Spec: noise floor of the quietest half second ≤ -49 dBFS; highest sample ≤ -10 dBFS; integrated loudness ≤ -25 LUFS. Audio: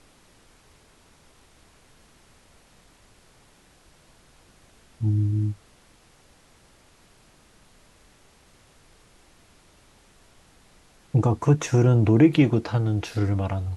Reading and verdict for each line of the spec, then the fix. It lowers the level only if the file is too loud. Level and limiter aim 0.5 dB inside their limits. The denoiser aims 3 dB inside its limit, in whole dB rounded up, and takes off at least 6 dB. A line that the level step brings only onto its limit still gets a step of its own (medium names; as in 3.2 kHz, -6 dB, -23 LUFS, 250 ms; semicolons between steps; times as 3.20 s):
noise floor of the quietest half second -57 dBFS: pass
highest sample -6.0 dBFS: fail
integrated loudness -22.0 LUFS: fail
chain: trim -3.5 dB; peak limiter -10.5 dBFS